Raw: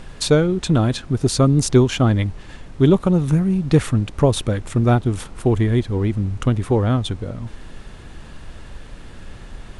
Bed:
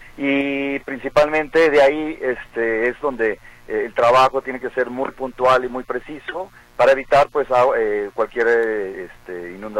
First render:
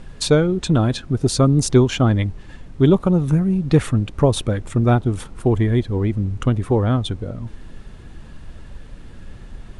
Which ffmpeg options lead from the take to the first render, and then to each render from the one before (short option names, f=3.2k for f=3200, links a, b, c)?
-af "afftdn=nr=6:nf=-39"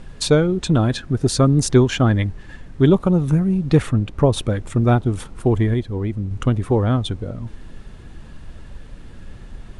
-filter_complex "[0:a]asettb=1/sr,asplit=3[a][b][c];[a]atrim=end=0.894[d];[b]atrim=start=0.89:end=2.89,asetpts=PTS-STARTPTS,afade=t=in:d=0.004:c=qsin,afade=t=out:st=1.996:d=0.004:c=qsin,equalizer=f=1.7k:w=4:g=5.5[e];[c]atrim=start=2.886[f];[d][e]acrossfade=d=0.004:c1=hsin:c2=qsin[g];[g][f]acrossfade=d=0.004:c1=qsin:c2=hsin,asettb=1/sr,asplit=3[h][i][j];[h]atrim=end=3.824[k];[i]atrim=start=3.82:end=4.38,asetpts=PTS-STARTPTS,afade=t=in:d=0.004:c=qsin,afade=t=out:st=0.556:d=0.004:c=qsin,highshelf=f=4.6k:g=-5.5[l];[j]atrim=start=4.376[m];[k][l]acrossfade=d=0.004:c1=hsin:c2=qsin[n];[n][m]acrossfade=d=0.004:c1=qsin:c2=hsin,asplit=3[o][p][q];[o]atrim=end=5.742[r];[p]atrim=start=5.738:end=6.312,asetpts=PTS-STARTPTS,volume=-3.5dB[s];[q]atrim=start=6.308[t];[r][s]acrossfade=d=0.004:c1=hsin:c2=hsin[u];[u][t]acrossfade=d=0.004:c1=hsin:c2=hsin"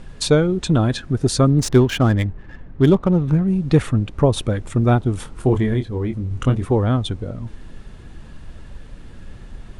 -filter_complex "[0:a]asettb=1/sr,asplit=3[a][b][c];[a]atrim=end=1.504[d];[b]atrim=start=1.5:end=3.48,asetpts=PTS-STARTPTS,afade=t=in:d=0.004:c=qsin,afade=t=out:st=1.976:d=0.004:c=qsin,adynamicsmooth=sensitivity=6.5:basefreq=1.7k[e];[c]atrim=start=3.476[f];[d][e]acrossfade=d=0.004:c1=hsin:c2=qsin[g];[g][f]acrossfade=d=0.004:c1=qsin:c2=hsin,asettb=1/sr,asplit=3[h][i][j];[h]atrim=end=5.194[k];[i]atrim=start=5.19:end=6.65,asetpts=PTS-STARTPTS,afade=t=in:d=0.004:c=qsin,afade=t=out:st=1.456:d=0.004:c=qsin,asplit=2[l][m];[m]adelay=23,volume=-7dB[n];[l][n]amix=inputs=2:normalize=0,atrim=end_sample=64386[o];[j]atrim=start=6.646[p];[k][o]acrossfade=d=0.004:c1=hsin:c2=qsin[q];[q][p]acrossfade=d=0.004:c1=qsin:c2=hsin"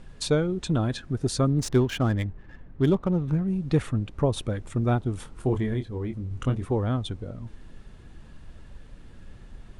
-af "volume=-8dB"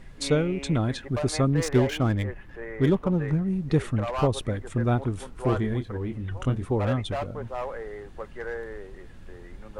-filter_complex "[1:a]volume=-18dB[a];[0:a][a]amix=inputs=2:normalize=0"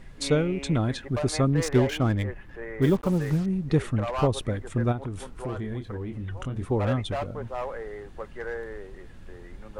-filter_complex "[0:a]asettb=1/sr,asplit=3[a][b][c];[a]atrim=end=2.824[d];[b]atrim=start=2.82:end=3.46,asetpts=PTS-STARTPTS,afade=t=in:d=0.004:c=qsin,afade=t=out:st=0.636:d=0.004:c=qsin,acrusher=bits=6:mix=0:aa=0.5[e];[c]atrim=start=3.456[f];[d][e]acrossfade=d=0.004:c1=hsin:c2=qsin[g];[g][f]acrossfade=d=0.004:c1=qsin:c2=hsin,asplit=3[h][i][j];[h]afade=t=out:st=4.91:d=0.02[k];[i]acompressor=threshold=-30dB:ratio=3:attack=3.2:release=140:knee=1:detection=peak,afade=t=in:st=4.91:d=0.02,afade=t=out:st=6.55:d=0.02[l];[j]afade=t=in:st=6.55:d=0.02[m];[k][l][m]amix=inputs=3:normalize=0"